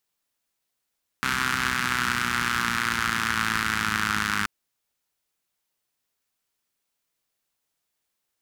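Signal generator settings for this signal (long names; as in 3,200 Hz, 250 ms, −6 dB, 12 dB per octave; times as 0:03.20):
pulse-train model of a four-cylinder engine, changing speed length 3.23 s, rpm 3,900, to 3,100, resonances 85/180/1,400 Hz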